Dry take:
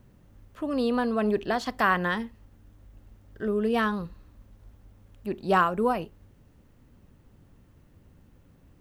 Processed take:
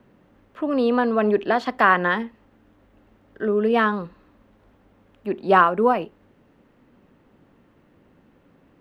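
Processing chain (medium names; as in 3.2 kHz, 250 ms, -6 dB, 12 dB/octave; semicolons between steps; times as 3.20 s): three-band isolator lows -18 dB, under 190 Hz, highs -15 dB, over 3.4 kHz; trim +7 dB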